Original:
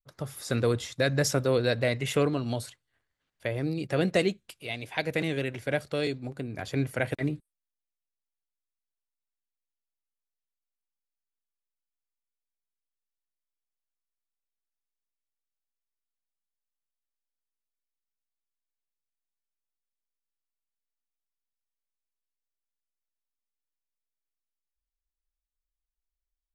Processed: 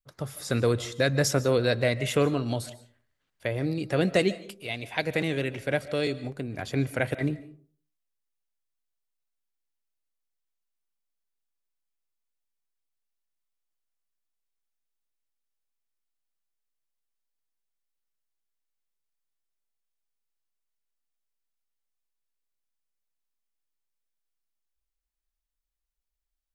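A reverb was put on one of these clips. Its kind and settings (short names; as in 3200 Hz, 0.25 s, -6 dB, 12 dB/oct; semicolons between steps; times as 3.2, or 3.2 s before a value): digital reverb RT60 0.46 s, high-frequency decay 0.45×, pre-delay 0.105 s, DRR 16.5 dB; gain +1.5 dB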